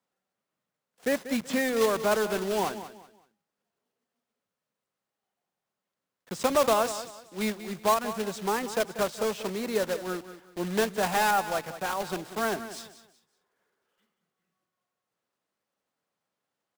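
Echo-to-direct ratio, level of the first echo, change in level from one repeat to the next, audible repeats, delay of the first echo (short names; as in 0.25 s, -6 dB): -12.5 dB, -13.0 dB, -11.0 dB, 3, 0.188 s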